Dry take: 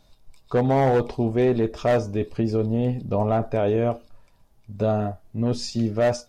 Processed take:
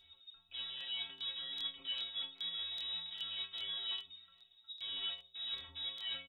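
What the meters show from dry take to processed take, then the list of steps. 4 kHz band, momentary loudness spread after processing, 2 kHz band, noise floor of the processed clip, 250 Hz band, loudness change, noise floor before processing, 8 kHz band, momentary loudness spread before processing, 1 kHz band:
+5.5 dB, 10 LU, -14.5 dB, -67 dBFS, under -40 dB, -16.5 dB, -59 dBFS, no reading, 6 LU, -31.5 dB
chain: speakerphone echo 110 ms, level -28 dB; in parallel at -3 dB: integer overflow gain 27 dB; on the sum: frequency inversion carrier 3.7 kHz; reverse; compression 6:1, threshold -32 dBFS, peak gain reduction 15.5 dB; reverse; inharmonic resonator 81 Hz, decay 0.82 s, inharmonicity 0.03; crackling interface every 0.40 s, samples 1024, repeat, from 0.76 s; trim +5.5 dB

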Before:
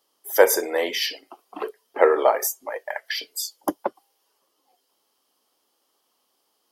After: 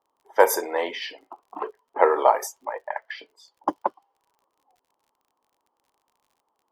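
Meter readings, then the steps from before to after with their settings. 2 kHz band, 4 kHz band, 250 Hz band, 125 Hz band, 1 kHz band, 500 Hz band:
-3.0 dB, -8.5 dB, -3.5 dB, no reading, +3.5 dB, -2.5 dB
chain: peaking EQ 940 Hz +11 dB 0.61 oct; level-controlled noise filter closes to 1.1 kHz, open at -12 dBFS; crackle 43 per s -47 dBFS; trim -4 dB

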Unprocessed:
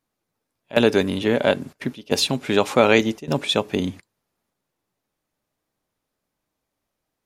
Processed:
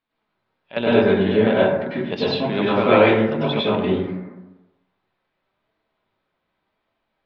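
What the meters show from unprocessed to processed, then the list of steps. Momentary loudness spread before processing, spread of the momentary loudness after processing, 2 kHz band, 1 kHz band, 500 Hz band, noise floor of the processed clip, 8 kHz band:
10 LU, 11 LU, +0.5 dB, +3.0 dB, +3.0 dB, -76 dBFS, under -25 dB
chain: steep low-pass 3.9 kHz 36 dB/octave; flange 0.88 Hz, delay 4.4 ms, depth 1.4 ms, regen +71%; plate-style reverb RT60 1 s, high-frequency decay 0.35×, pre-delay 85 ms, DRR -9 dB; tape noise reduction on one side only encoder only; trim -3.5 dB

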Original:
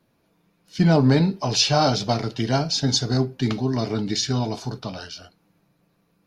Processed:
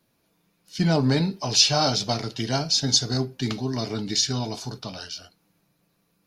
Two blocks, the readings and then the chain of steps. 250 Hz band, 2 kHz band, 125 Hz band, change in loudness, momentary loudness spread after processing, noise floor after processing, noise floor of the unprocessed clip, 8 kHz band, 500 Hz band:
-4.5 dB, -2.0 dB, -4.5 dB, -1.5 dB, 17 LU, -70 dBFS, -67 dBFS, +3.5 dB, -4.0 dB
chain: treble shelf 3.2 kHz +10 dB; trim -4.5 dB

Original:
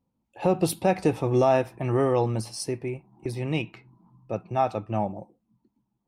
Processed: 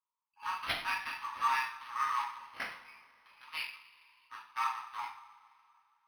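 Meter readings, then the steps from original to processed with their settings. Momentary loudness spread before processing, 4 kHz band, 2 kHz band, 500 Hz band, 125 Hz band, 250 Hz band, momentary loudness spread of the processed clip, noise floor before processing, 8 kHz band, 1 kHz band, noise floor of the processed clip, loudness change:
13 LU, -1.5 dB, +1.5 dB, -33.5 dB, under -35 dB, -34.0 dB, 19 LU, -78 dBFS, -15.0 dB, -5.0 dB, under -85 dBFS, -10.0 dB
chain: local Wiener filter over 25 samples; steep high-pass 950 Hz 96 dB/octave; two-slope reverb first 0.47 s, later 2.6 s, from -20 dB, DRR -4.5 dB; decimation joined by straight lines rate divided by 6×

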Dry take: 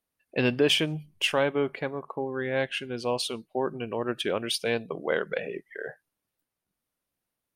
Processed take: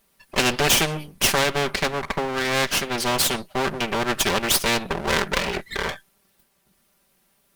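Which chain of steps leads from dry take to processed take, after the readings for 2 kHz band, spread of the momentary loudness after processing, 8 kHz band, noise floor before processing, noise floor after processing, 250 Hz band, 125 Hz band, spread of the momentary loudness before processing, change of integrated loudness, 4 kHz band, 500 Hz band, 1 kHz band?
+8.5 dB, 8 LU, +16.0 dB, under -85 dBFS, -66 dBFS, +3.0 dB, +5.5 dB, 10 LU, +6.5 dB, +7.0 dB, +1.5 dB, +10.5 dB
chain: comb filter that takes the minimum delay 5.1 ms; spectrum-flattening compressor 2:1; trim +8.5 dB

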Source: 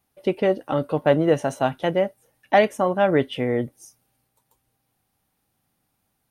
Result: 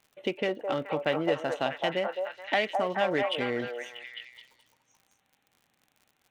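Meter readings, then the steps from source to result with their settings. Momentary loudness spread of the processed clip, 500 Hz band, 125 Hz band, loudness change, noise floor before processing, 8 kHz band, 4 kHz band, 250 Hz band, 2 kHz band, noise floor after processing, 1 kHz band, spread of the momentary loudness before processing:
13 LU, -8.0 dB, -13.0 dB, -8.0 dB, -74 dBFS, no reading, +1.0 dB, -10.0 dB, -2.5 dB, -74 dBFS, -7.0 dB, 7 LU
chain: local Wiener filter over 9 samples; frequency weighting D; compression 2:1, threshold -33 dBFS, peak gain reduction 13 dB; on a send: repeats whose band climbs or falls 213 ms, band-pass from 710 Hz, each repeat 0.7 oct, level -0.5 dB; on the sum: crackle 67 per s -48 dBFS

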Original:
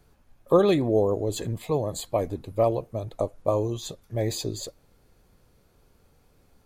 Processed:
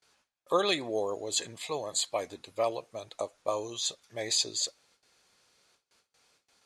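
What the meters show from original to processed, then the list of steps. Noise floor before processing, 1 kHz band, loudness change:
-62 dBFS, -3.5 dB, -5.5 dB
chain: frequency weighting ITU-R 468; gate with hold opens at -52 dBFS; treble shelf 9.7 kHz -11 dB; trim -2.5 dB

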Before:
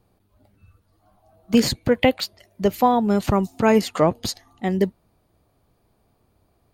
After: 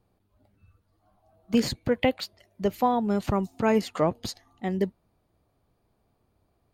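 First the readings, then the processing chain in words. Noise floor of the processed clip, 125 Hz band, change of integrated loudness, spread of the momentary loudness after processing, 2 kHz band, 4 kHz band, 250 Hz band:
-72 dBFS, -6.0 dB, -6.0 dB, 11 LU, -6.5 dB, -7.5 dB, -6.0 dB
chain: treble shelf 5.6 kHz -4.5 dB; trim -6 dB

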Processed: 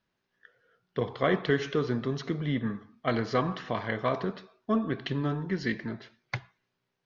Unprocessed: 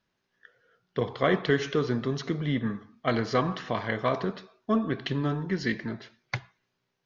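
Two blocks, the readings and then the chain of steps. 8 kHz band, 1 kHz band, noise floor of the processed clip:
no reading, -2.0 dB, -81 dBFS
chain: distance through air 54 m; trim -1.5 dB

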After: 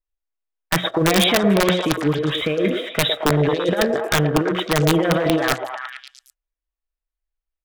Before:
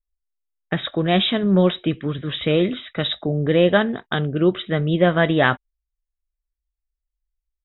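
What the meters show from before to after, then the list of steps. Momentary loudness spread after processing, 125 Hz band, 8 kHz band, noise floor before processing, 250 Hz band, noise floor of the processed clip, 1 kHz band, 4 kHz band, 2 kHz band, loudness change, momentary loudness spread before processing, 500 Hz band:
7 LU, 0.0 dB, no reading, -84 dBFS, 0.0 dB, under -85 dBFS, +3.0 dB, +3.0 dB, +1.5 dB, +1.0 dB, 8 LU, +0.5 dB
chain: tone controls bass -7 dB, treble -12 dB; hum notches 60/120/180 Hz; comb 6.2 ms, depth 48%; dynamic bell 2.4 kHz, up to +4 dB, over -42 dBFS, Q 7.4; compressor with a negative ratio -20 dBFS, ratio -0.5; waveshaping leveller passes 1; integer overflow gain 9 dB; on a send: repeats whose band climbs or falls 111 ms, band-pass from 520 Hz, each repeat 0.7 oct, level -1.5 dB

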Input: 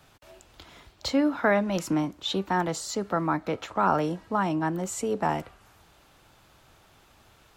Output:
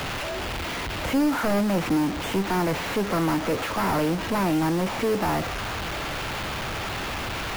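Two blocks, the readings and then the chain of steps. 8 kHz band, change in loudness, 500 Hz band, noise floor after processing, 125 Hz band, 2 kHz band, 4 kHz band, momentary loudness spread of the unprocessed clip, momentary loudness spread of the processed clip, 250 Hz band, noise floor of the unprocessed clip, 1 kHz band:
+1.5 dB, +1.5 dB, +2.5 dB, -30 dBFS, +5.5 dB, +5.0 dB, +5.5 dB, 6 LU, 7 LU, +4.0 dB, -59 dBFS, +1.5 dB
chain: one-bit delta coder 16 kbps, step -38 dBFS; power-law waveshaper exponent 0.5; bit crusher 6-bit

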